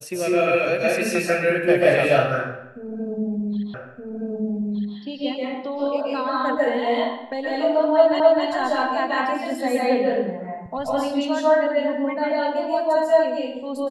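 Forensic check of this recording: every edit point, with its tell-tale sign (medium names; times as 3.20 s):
3.74 s: repeat of the last 1.22 s
8.20 s: repeat of the last 0.26 s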